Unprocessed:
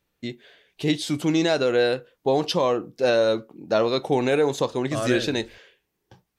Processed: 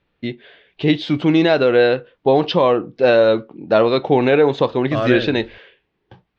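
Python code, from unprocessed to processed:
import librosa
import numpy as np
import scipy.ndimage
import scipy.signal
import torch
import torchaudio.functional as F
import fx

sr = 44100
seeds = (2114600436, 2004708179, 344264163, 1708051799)

y = scipy.signal.sosfilt(scipy.signal.butter(4, 3600.0, 'lowpass', fs=sr, output='sos'), x)
y = y * librosa.db_to_amplitude(7.0)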